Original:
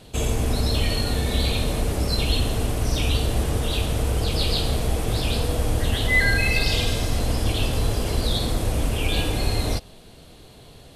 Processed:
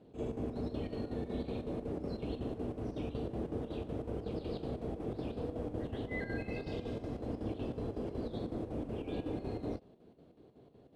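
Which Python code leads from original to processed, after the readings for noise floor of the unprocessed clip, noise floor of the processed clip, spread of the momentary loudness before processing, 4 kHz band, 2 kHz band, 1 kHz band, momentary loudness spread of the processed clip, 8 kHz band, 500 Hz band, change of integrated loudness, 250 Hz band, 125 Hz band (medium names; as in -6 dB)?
-46 dBFS, -61 dBFS, 5 LU, -30.0 dB, -24.5 dB, -16.5 dB, 1 LU, under -35 dB, -10.0 dB, -16.5 dB, -9.0 dB, -18.5 dB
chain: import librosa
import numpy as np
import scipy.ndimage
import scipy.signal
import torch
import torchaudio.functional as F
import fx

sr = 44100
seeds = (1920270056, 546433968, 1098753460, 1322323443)

y = fx.chopper(x, sr, hz=5.4, depth_pct=60, duty_pct=70)
y = fx.bandpass_q(y, sr, hz=320.0, q=1.2)
y = F.gain(torch.from_numpy(y), -6.0).numpy()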